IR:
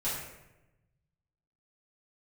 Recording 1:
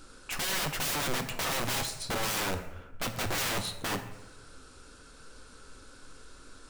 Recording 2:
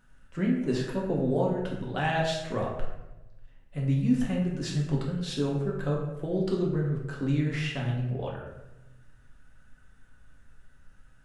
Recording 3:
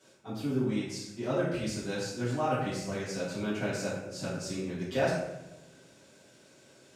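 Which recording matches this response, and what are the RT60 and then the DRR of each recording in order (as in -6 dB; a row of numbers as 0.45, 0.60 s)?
3; 1.0, 0.95, 0.95 s; 6.5, -3.0, -11.0 dB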